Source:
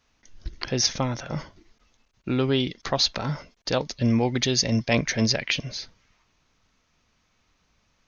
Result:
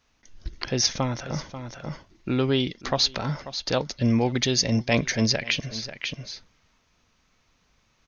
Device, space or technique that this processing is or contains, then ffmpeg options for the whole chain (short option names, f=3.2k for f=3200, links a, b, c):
ducked delay: -filter_complex "[0:a]asplit=3[a][b][c];[b]adelay=539,volume=-3.5dB[d];[c]apad=whole_len=379922[e];[d][e]sidechaincompress=threshold=-38dB:ratio=12:attack=7.7:release=410[f];[a][f]amix=inputs=2:normalize=0"